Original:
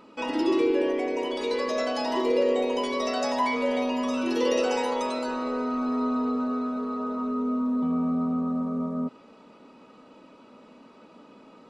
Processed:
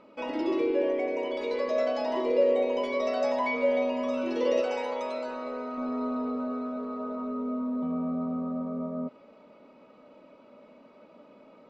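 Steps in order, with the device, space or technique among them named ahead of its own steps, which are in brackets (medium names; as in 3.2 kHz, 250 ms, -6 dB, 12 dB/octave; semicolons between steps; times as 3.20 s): low-pass 6.4 kHz 12 dB/octave; inside a helmet (treble shelf 4.3 kHz -7 dB; small resonant body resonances 590/2200 Hz, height 11 dB, ringing for 35 ms); 4.61–5.78 s: bass shelf 500 Hz -6 dB; trim -5 dB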